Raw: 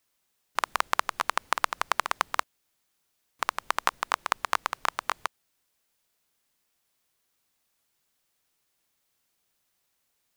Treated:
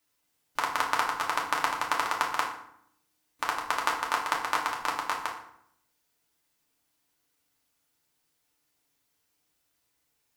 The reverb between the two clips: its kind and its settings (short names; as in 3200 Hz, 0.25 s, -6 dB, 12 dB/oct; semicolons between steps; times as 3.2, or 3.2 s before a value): FDN reverb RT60 0.7 s, low-frequency decay 1.45×, high-frequency decay 0.7×, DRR -2.5 dB; gain -4 dB